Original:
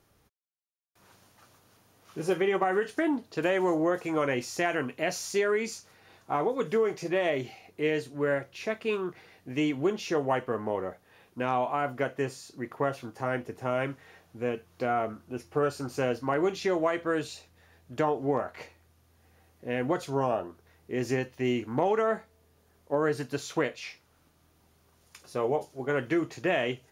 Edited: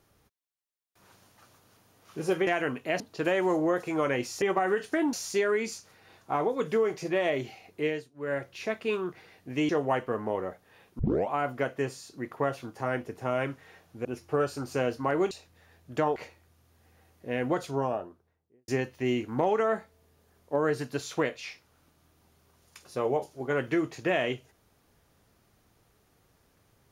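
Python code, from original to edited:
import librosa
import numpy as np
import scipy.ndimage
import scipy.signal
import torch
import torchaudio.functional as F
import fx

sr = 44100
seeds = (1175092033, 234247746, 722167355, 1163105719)

y = fx.studio_fade_out(x, sr, start_s=19.94, length_s=1.13)
y = fx.edit(y, sr, fx.swap(start_s=2.47, length_s=0.71, other_s=4.6, other_length_s=0.53),
    fx.fade_down_up(start_s=7.82, length_s=0.6, db=-19.5, fade_s=0.28),
    fx.cut(start_s=9.69, length_s=0.4),
    fx.tape_start(start_s=11.39, length_s=0.3),
    fx.cut(start_s=14.45, length_s=0.83),
    fx.cut(start_s=16.54, length_s=0.78),
    fx.cut(start_s=18.17, length_s=0.38), tone=tone)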